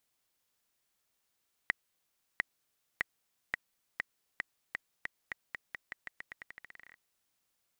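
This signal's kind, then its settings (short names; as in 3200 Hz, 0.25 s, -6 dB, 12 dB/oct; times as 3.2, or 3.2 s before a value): bouncing ball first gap 0.70 s, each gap 0.87, 1920 Hz, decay 15 ms -13 dBFS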